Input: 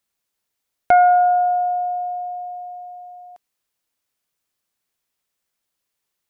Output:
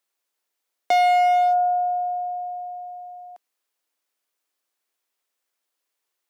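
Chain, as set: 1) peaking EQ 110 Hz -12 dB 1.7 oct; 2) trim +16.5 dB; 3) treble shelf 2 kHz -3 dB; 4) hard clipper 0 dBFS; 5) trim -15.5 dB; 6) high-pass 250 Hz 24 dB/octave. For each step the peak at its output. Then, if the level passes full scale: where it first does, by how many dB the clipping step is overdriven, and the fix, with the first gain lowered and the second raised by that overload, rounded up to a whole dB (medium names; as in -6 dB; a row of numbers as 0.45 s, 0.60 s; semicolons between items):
-6.0 dBFS, +10.5 dBFS, +10.0 dBFS, 0.0 dBFS, -15.5 dBFS, -9.0 dBFS; step 2, 10.0 dB; step 2 +6.5 dB, step 5 -5.5 dB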